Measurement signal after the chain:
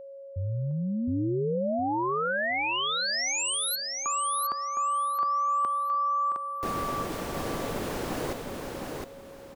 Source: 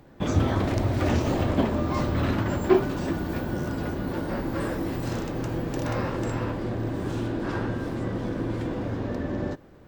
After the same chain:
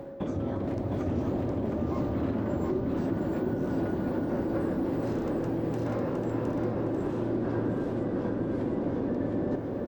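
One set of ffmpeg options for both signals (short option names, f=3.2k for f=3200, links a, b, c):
-filter_complex "[0:a]equalizer=f=400:w=0.33:g=14,acrossover=split=310[a][b];[b]acompressor=threshold=-20dB:ratio=6[c];[a][c]amix=inputs=2:normalize=0,alimiter=limit=-11.5dB:level=0:latency=1:release=234,areverse,acompressor=threshold=-29dB:ratio=6,areverse,aeval=exprs='val(0)+0.00891*sin(2*PI*550*n/s)':c=same,asplit=2[d][e];[e]aecho=0:1:712|1424|2136|2848:0.668|0.18|0.0487|0.0132[f];[d][f]amix=inputs=2:normalize=0"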